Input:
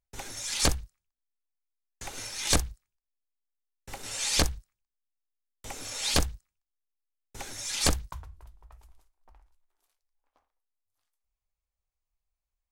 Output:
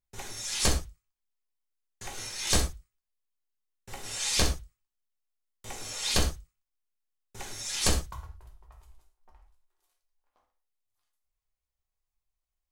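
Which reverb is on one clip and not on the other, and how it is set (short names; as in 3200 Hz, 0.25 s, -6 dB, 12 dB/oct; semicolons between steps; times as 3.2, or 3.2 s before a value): non-linear reverb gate 0.14 s falling, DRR 1 dB; gain -3 dB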